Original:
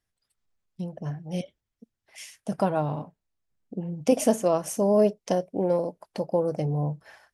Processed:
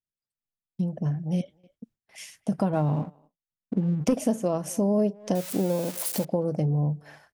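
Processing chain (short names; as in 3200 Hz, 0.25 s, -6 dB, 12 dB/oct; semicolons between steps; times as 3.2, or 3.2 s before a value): 5.35–6.25 switching spikes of -20.5 dBFS; speakerphone echo 0.26 s, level -26 dB; gate with hold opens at -50 dBFS; bell 180 Hz +9 dB 1.9 oct; 2.73–4.19 sample leveller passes 1; compressor 2.5:1, threshold -24 dBFS, peak gain reduction 10 dB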